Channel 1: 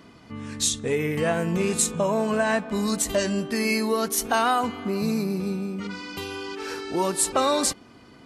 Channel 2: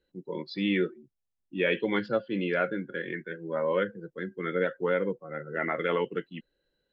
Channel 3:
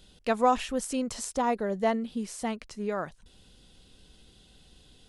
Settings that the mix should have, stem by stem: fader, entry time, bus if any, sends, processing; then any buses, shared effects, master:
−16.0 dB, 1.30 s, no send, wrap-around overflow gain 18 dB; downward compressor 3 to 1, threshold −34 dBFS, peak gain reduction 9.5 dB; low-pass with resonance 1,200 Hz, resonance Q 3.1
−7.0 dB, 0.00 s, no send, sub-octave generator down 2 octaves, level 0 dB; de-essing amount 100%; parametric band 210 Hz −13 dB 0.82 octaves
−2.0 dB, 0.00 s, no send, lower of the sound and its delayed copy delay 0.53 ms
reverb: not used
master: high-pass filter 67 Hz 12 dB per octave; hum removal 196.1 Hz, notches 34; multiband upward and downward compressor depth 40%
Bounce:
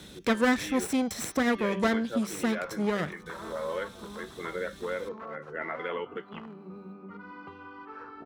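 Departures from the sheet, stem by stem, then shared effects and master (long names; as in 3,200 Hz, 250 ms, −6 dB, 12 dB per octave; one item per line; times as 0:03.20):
stem 2: missing sub-octave generator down 2 octaves, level 0 dB
stem 3 −2.0 dB → +4.5 dB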